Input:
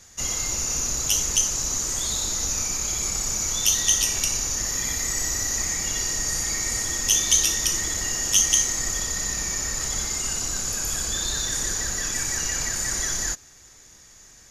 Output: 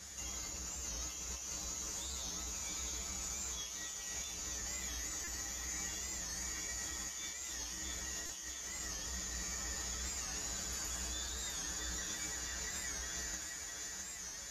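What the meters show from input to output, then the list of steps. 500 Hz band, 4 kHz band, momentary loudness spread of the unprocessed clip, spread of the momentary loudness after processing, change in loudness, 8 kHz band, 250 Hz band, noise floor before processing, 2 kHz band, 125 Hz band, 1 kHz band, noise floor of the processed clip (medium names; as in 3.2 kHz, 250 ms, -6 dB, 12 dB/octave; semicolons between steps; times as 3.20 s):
-14.5 dB, -16.5 dB, 6 LU, 3 LU, -17.5 dB, -17.5 dB, -14.0 dB, -50 dBFS, -14.0 dB, -13.5 dB, -13.0 dB, -46 dBFS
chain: high-pass 45 Hz; dynamic bell 9.5 kHz, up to -6 dB, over -35 dBFS, Q 0.97; compressor with a negative ratio -37 dBFS, ratio -1; feedback comb 62 Hz, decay 0.2 s, harmonics odd, mix 90%; thinning echo 658 ms, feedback 57%, high-pass 410 Hz, level -4 dB; buffer glitch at 5.24/8.26 s, samples 128, times 10; warped record 45 rpm, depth 100 cents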